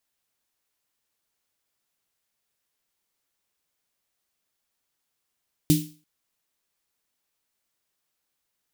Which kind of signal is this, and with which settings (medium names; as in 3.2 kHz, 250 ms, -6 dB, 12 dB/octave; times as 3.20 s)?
snare drum length 0.34 s, tones 160 Hz, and 300 Hz, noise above 2.6 kHz, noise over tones -9 dB, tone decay 0.35 s, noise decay 0.38 s